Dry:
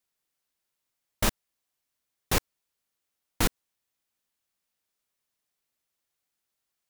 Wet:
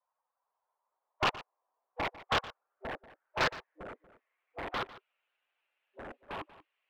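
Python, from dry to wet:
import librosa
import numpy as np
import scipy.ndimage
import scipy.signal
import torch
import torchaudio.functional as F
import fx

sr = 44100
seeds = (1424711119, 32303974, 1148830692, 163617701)

p1 = fx.spec_quant(x, sr, step_db=15)
p2 = scipy.signal.sosfilt(scipy.signal.butter(16, 490.0, 'highpass', fs=sr, output='sos'), p1)
p3 = 10.0 ** (-31.0 / 20.0) * np.tanh(p2 / 10.0 ** (-31.0 / 20.0))
p4 = p2 + (p3 * librosa.db_to_amplitude(-8.0))
p5 = fx.filter_sweep_lowpass(p4, sr, from_hz=990.0, to_hz=2700.0, start_s=1.81, end_s=5.09, q=4.8)
p6 = (np.mod(10.0 ** (18.0 / 20.0) * p5 + 1.0, 2.0) - 1.0) / 10.0 ** (18.0 / 20.0)
p7 = fx.air_absorb(p6, sr, metres=220.0)
p8 = p7 + fx.echo_single(p7, sr, ms=118, db=-17.0, dry=0)
y = fx.echo_pitch(p8, sr, ms=450, semitones=-4, count=3, db_per_echo=-6.0)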